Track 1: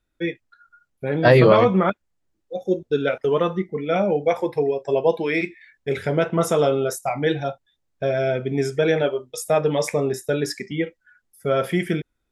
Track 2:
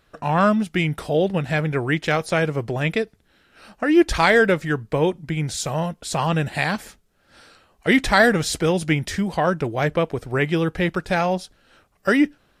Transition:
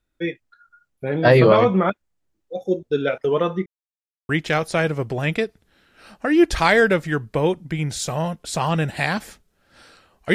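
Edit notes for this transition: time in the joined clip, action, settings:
track 1
3.66–4.29 s: mute
4.29 s: go over to track 2 from 1.87 s

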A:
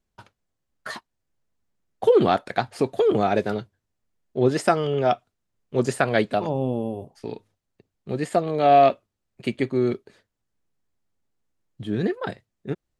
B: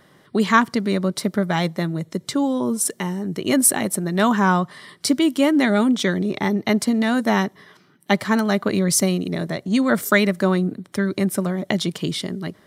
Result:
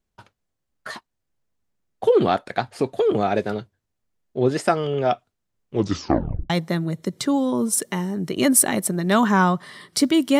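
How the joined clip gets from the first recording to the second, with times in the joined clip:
A
5.71 s: tape stop 0.79 s
6.50 s: go over to B from 1.58 s

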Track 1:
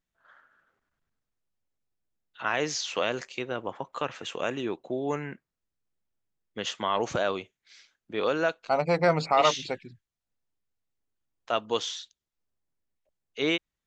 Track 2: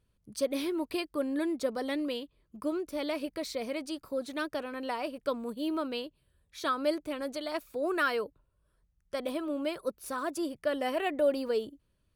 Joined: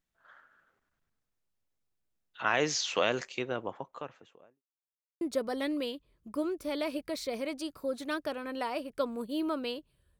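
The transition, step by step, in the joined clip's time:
track 1
3.17–4.63 s: studio fade out
4.63–5.21 s: mute
5.21 s: go over to track 2 from 1.49 s

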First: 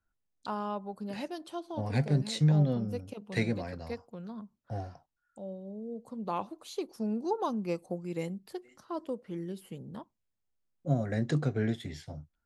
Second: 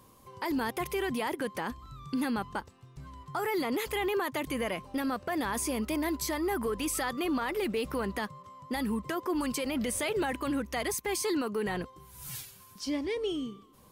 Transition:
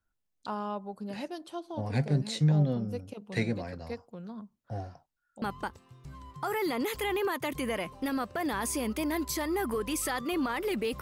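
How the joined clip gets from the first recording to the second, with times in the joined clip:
first
5.42 s: go over to second from 2.34 s

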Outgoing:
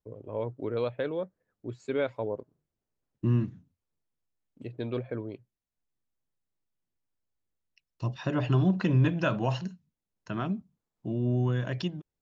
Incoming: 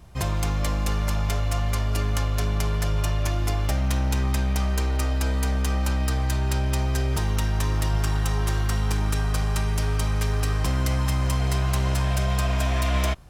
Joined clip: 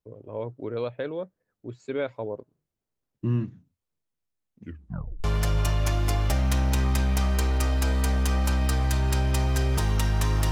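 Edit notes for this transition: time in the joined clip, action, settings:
outgoing
4.49 s: tape stop 0.75 s
5.24 s: go over to incoming from 2.63 s

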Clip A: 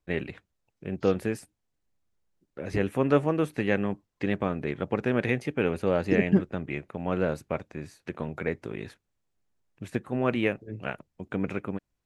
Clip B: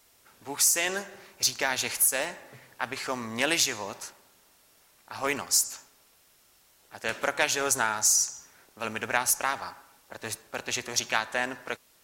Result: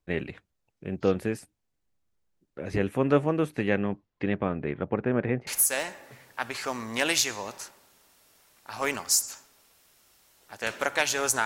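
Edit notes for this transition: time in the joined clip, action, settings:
clip A
3.69–5.47 s: low-pass 6 kHz -> 1.3 kHz
5.47 s: go over to clip B from 1.89 s

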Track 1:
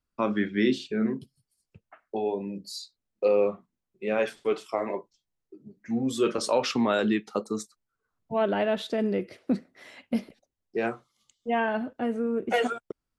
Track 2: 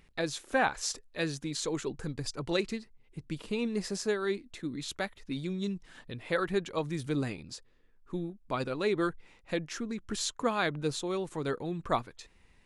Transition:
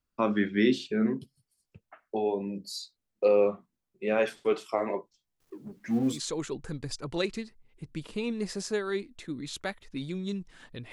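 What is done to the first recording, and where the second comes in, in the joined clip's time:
track 1
5.40–6.20 s: companding laws mixed up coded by mu
6.15 s: go over to track 2 from 1.50 s, crossfade 0.10 s

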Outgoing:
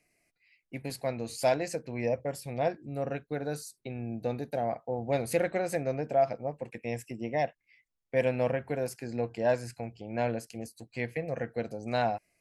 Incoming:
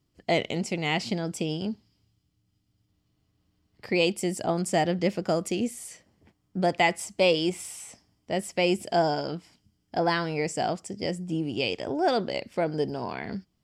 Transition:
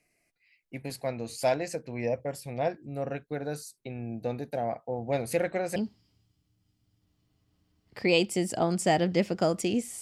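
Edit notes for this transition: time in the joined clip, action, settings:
outgoing
5.76 s: go over to incoming from 1.63 s

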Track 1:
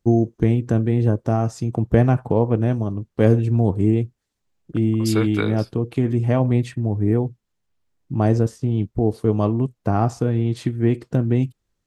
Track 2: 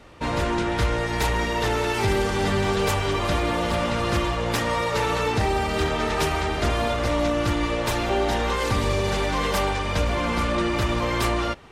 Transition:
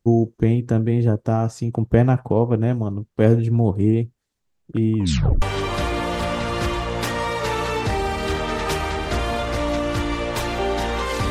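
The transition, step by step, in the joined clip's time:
track 1
4.97 s: tape stop 0.45 s
5.42 s: go over to track 2 from 2.93 s

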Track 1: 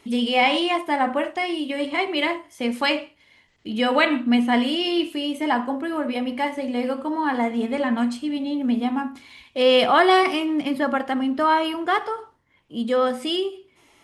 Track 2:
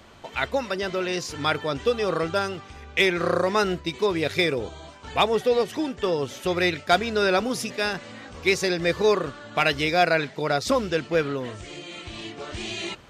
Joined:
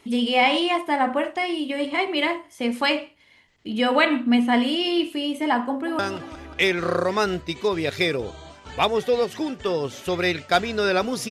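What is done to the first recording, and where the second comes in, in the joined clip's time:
track 1
5.66–5.99 s: echo throw 180 ms, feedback 65%, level -10.5 dB
5.99 s: go over to track 2 from 2.37 s

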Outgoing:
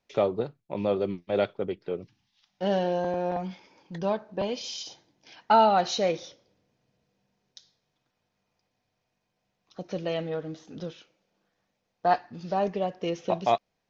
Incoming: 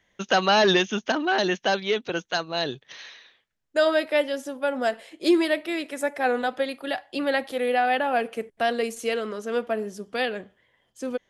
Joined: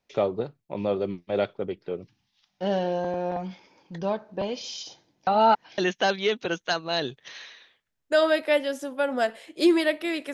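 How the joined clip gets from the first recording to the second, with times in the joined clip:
outgoing
5.27–5.78 s: reverse
5.78 s: go over to incoming from 1.42 s

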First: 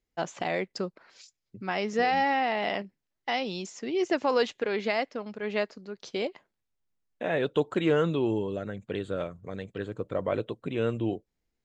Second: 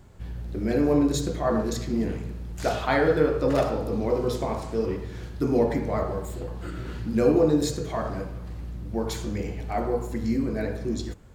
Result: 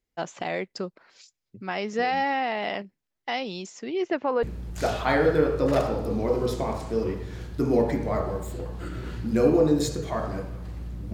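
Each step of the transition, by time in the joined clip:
first
3.83–4.43 s: low-pass 6.5 kHz -> 1.4 kHz
4.43 s: go over to second from 2.25 s

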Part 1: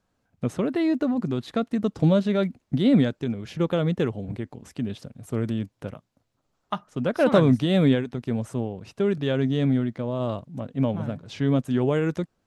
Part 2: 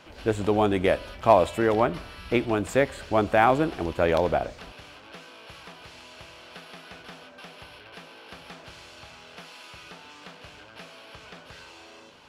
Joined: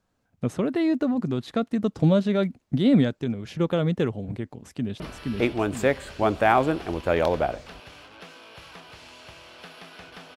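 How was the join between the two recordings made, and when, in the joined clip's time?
part 1
4.54–5.00 s: echo throw 470 ms, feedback 45%, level -1 dB
5.00 s: go over to part 2 from 1.92 s

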